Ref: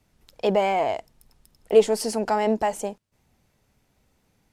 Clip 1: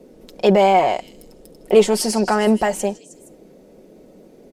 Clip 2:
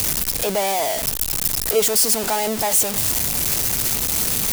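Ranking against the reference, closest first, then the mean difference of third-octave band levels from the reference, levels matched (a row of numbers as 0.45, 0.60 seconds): 1, 2; 3.0, 12.0 decibels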